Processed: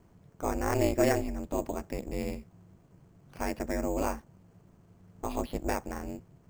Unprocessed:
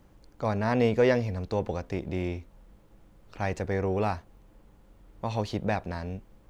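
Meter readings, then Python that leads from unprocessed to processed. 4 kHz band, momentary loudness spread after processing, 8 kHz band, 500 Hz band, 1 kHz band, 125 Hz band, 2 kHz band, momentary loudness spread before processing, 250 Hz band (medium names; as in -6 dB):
-3.0 dB, 13 LU, no reading, -4.0 dB, -2.0 dB, -7.0 dB, -4.0 dB, 13 LU, -2.0 dB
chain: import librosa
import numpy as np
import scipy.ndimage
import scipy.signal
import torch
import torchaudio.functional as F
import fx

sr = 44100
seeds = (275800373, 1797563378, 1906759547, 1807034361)

y = np.repeat(scipy.signal.resample_poly(x, 1, 6), 6)[:len(x)]
y = y * np.sin(2.0 * np.pi * 140.0 * np.arange(len(y)) / sr)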